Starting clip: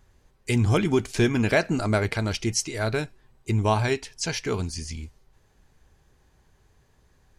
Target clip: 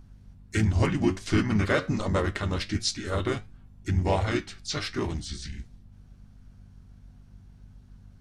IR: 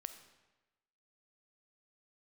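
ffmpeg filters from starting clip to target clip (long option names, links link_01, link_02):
-filter_complex "[0:a]asetrate=39690,aresample=44100,aeval=exprs='val(0)+0.00501*(sin(2*PI*50*n/s)+sin(2*PI*2*50*n/s)/2+sin(2*PI*3*50*n/s)/3+sin(2*PI*4*50*n/s)/4+sin(2*PI*5*50*n/s)/5)':channel_layout=same,asplit=3[link_01][link_02][link_03];[link_02]asetrate=33038,aresample=44100,atempo=1.33484,volume=-8dB[link_04];[link_03]asetrate=37084,aresample=44100,atempo=1.18921,volume=-4dB[link_05];[link_01][link_04][link_05]amix=inputs=3:normalize=0,flanger=delay=8.1:depth=3.2:regen=76:speed=1.4:shape=triangular"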